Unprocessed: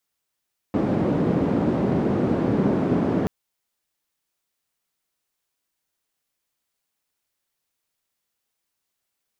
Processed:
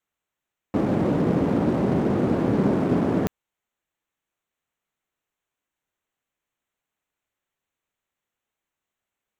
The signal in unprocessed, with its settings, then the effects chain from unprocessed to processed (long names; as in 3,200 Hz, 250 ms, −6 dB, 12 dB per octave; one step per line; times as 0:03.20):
band-limited noise 190–240 Hz, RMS −21.5 dBFS 2.53 s
adaptive Wiener filter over 9 samples
high-shelf EQ 3,700 Hz +8 dB